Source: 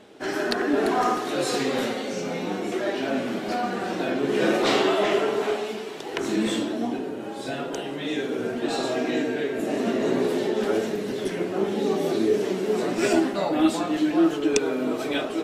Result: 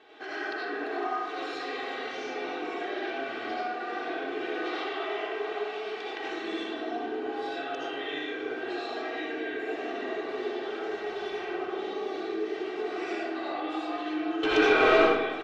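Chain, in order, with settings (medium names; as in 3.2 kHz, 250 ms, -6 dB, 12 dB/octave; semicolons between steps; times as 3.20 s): 10.90–11.51 s: comb filter that takes the minimum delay 5.2 ms; high-pass 1.3 kHz 6 dB/octave; comb 2.6 ms, depth 78%; compression, threshold -36 dBFS, peak gain reduction 17.5 dB; 14.43–14.97 s: overdrive pedal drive 29 dB, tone 8 kHz, clips at -16 dBFS; distance through air 250 m; reverberation RT60 1.1 s, pre-delay 40 ms, DRR -6 dB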